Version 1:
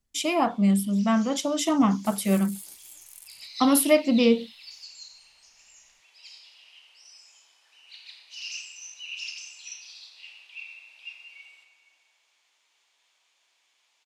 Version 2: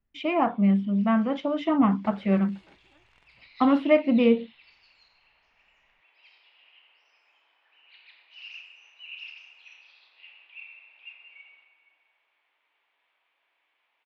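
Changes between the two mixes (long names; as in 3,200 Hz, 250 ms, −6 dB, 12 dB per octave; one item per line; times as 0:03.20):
second sound +8.0 dB
master: add low-pass filter 2,600 Hz 24 dB per octave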